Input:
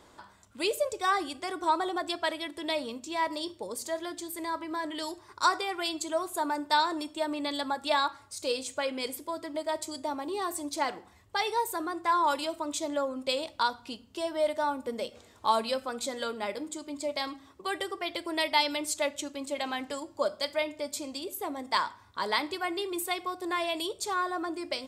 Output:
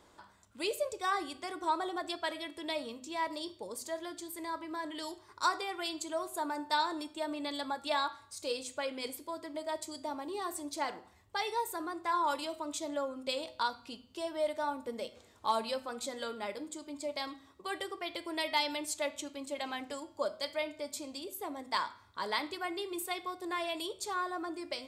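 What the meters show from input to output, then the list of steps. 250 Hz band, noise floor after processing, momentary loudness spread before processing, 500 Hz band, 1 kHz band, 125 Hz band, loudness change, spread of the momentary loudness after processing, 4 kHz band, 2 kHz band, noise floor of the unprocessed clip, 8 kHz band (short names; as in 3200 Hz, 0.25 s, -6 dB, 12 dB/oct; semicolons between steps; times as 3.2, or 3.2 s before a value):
-5.0 dB, -62 dBFS, 9 LU, -5.0 dB, -5.5 dB, n/a, -5.0 dB, 9 LU, -5.0 dB, -5.0 dB, -57 dBFS, -5.0 dB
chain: hard clip -13 dBFS, distortion -40 dB; de-hum 126.9 Hz, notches 38; gain -5 dB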